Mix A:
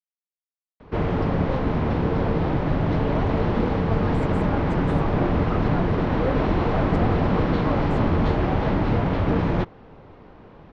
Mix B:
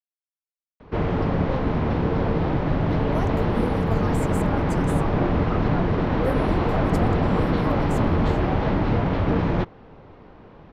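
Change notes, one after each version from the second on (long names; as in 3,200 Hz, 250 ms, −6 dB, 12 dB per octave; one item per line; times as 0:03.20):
speech: remove head-to-tape spacing loss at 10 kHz 21 dB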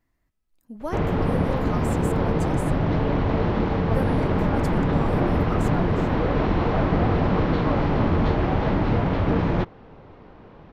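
speech: entry −2.30 s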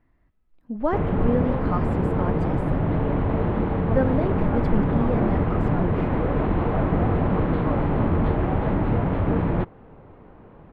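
speech +9.0 dB
master: add high-frequency loss of the air 450 metres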